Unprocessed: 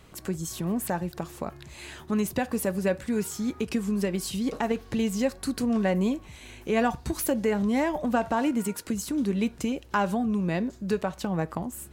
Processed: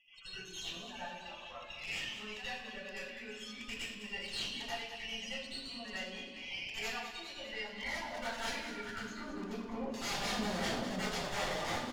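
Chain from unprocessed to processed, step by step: compressor 8:1, threshold -32 dBFS, peak gain reduction 12.5 dB; band-pass sweep 2900 Hz -> 670 Hz, 7.62–10.36; loudest bins only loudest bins 16; notches 50/100/150/200/250/300/350/400 Hz; notch comb 160 Hz; wrapped overs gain 44 dB; downsampling 16000 Hz; tube stage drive 49 dB, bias 0.7; thinning echo 0.203 s, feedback 61%, high-pass 220 Hz, level -10.5 dB; reverb RT60 0.75 s, pre-delay 77 ms, DRR -12 dB; gain +4.5 dB

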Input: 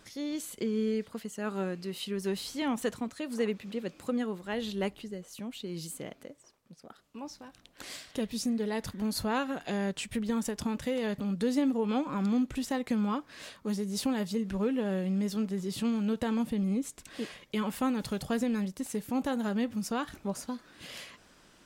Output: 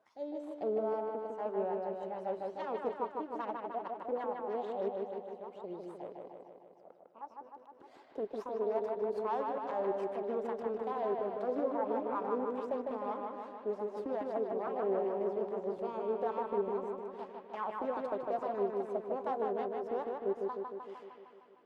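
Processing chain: bin magnitudes rounded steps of 15 dB; HPF 88 Hz 24 dB/oct; added harmonics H 6 -8 dB, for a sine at -18 dBFS; wah 2.4 Hz 390–1000 Hz, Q 4.7; on a send: dark delay 0.153 s, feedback 65%, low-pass 3600 Hz, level -3 dB

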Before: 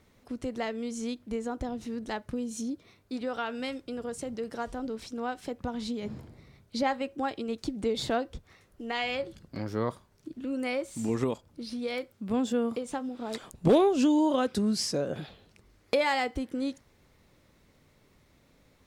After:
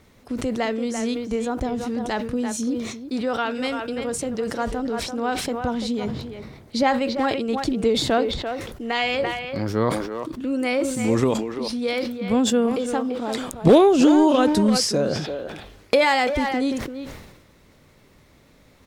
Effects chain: speakerphone echo 0.34 s, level -7 dB; sustainer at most 53 dB/s; gain +8 dB

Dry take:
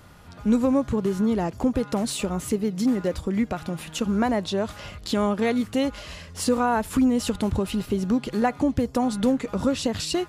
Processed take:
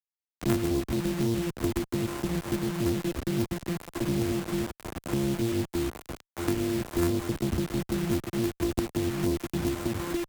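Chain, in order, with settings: sample sorter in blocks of 128 samples; EQ curve 270 Hz 0 dB, 660 Hz -13 dB, 3000 Hz -25 dB, 4500 Hz -21 dB, 7500 Hz -7 dB; requantised 6-bit, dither none; added harmonics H 2 -17 dB, 3 -16 dB, 4 -17 dB, 5 -20 dB, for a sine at -14.5 dBFS; three-band squash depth 40%

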